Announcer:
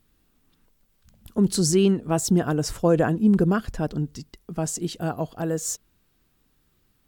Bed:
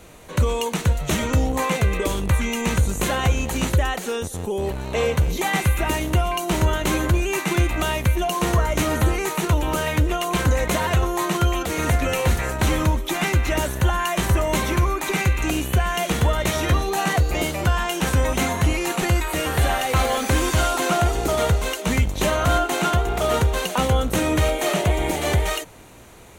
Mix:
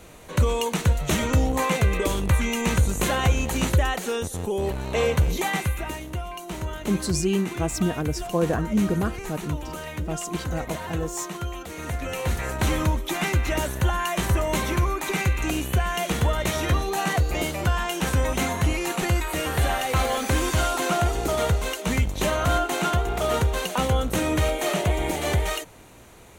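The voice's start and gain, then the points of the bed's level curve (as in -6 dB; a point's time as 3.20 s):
5.50 s, -4.0 dB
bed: 5.34 s -1 dB
6.04 s -11.5 dB
11.79 s -11.5 dB
12.56 s -3 dB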